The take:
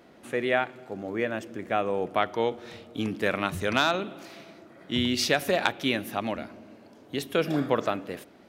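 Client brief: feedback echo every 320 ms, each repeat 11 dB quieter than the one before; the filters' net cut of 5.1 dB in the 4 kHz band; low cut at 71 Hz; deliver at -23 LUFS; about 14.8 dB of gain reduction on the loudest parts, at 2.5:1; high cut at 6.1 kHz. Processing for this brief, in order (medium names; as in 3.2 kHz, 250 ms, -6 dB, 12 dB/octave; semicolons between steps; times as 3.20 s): high-pass 71 Hz; low-pass 6.1 kHz; peaking EQ 4 kHz -6 dB; compression 2.5:1, threshold -43 dBFS; feedback delay 320 ms, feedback 28%, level -11 dB; trim +19 dB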